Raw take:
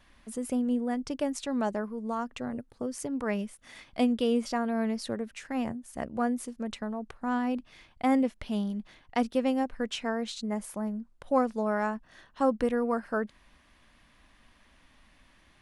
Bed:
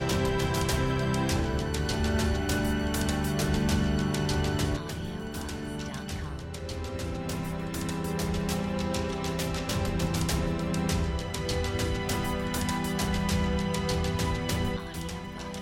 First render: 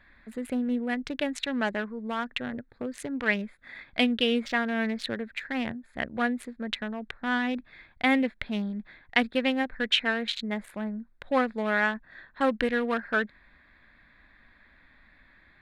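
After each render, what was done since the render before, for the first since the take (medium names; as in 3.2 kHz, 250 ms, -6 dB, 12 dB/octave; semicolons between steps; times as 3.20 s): local Wiener filter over 15 samples; high-order bell 2.5 kHz +15 dB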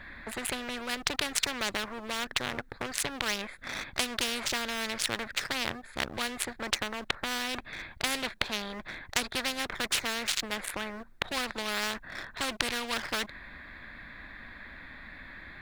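waveshaping leveller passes 1; spectrum-flattening compressor 4:1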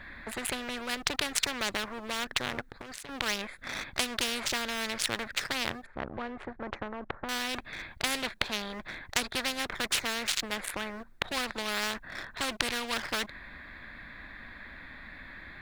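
2.69–3.09 s: compression 16:1, threshold -38 dBFS; 5.86–7.29 s: low-pass 1.2 kHz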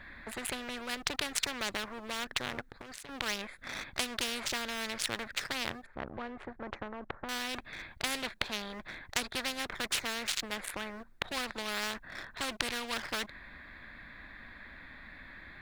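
trim -3.5 dB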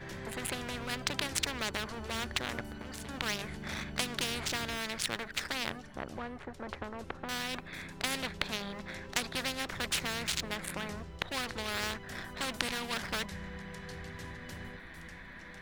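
add bed -17 dB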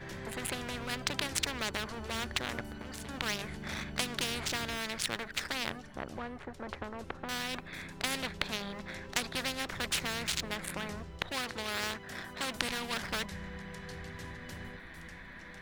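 11.33–12.55 s: bass shelf 73 Hz -10.5 dB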